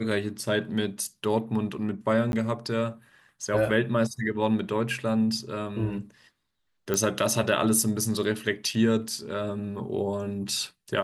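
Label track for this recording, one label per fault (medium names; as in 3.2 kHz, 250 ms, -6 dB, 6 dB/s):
2.320000	2.330000	dropout 11 ms
6.940000	6.940000	pop -12 dBFS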